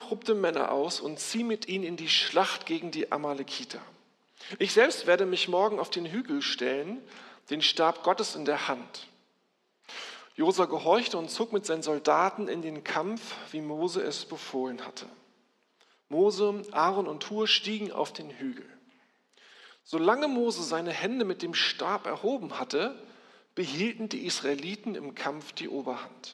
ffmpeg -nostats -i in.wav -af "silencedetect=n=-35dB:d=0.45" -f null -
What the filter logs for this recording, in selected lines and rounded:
silence_start: 3.82
silence_end: 4.45 | silence_duration: 0.63
silence_start: 9.02
silence_end: 9.89 | silence_duration: 0.88
silence_start: 15.06
silence_end: 16.12 | silence_duration: 1.06
silence_start: 18.60
silence_end: 19.93 | silence_duration: 1.33
silence_start: 22.92
silence_end: 23.57 | silence_duration: 0.66